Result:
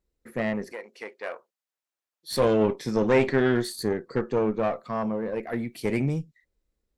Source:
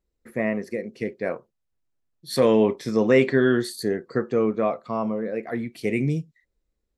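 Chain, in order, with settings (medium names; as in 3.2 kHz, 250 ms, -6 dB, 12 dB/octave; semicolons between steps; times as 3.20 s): single-diode clipper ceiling -23 dBFS; 0.72–2.31 s: high-pass 710 Hz 12 dB/octave; 4.73–5.97 s: treble shelf 11 kHz +8.5 dB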